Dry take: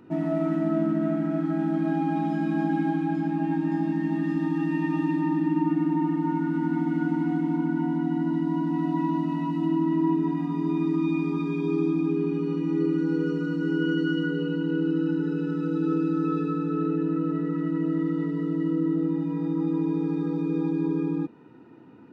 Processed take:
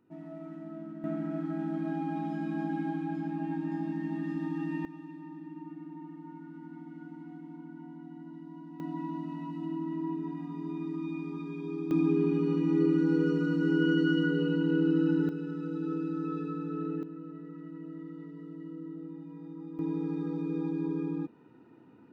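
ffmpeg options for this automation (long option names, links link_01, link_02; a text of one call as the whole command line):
ffmpeg -i in.wav -af "asetnsamples=nb_out_samples=441:pad=0,asendcmd='1.04 volume volume -8dB;4.85 volume volume -20dB;8.8 volume volume -11dB;11.91 volume volume -1dB;15.29 volume volume -8.5dB;17.03 volume volume -17dB;19.79 volume volume -6.5dB',volume=-18dB" out.wav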